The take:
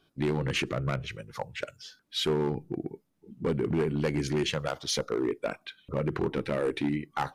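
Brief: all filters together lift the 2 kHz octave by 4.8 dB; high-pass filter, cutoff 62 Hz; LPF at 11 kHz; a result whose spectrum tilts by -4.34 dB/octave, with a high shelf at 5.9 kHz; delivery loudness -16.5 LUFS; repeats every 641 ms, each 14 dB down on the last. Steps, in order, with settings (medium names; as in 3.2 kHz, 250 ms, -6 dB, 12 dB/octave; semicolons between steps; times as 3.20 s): high-pass 62 Hz; low-pass 11 kHz; peaking EQ 2 kHz +5 dB; treble shelf 5.9 kHz +8.5 dB; feedback delay 641 ms, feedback 20%, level -14 dB; trim +13 dB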